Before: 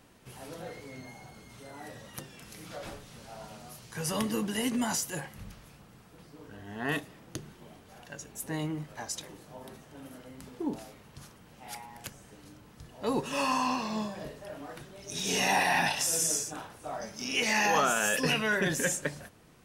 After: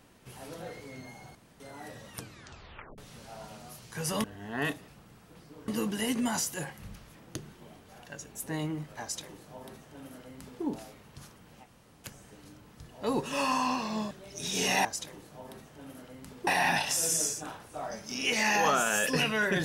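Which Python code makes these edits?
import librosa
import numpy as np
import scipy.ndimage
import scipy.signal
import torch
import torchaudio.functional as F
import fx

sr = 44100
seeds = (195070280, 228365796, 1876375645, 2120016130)

y = fx.edit(x, sr, fx.room_tone_fill(start_s=1.35, length_s=0.25),
    fx.tape_stop(start_s=2.11, length_s=0.87),
    fx.swap(start_s=4.24, length_s=1.47, other_s=6.51, other_length_s=0.64),
    fx.duplicate(start_s=9.01, length_s=1.62, to_s=15.57),
    fx.room_tone_fill(start_s=11.64, length_s=0.41, crossfade_s=0.06),
    fx.cut(start_s=14.11, length_s=0.72), tone=tone)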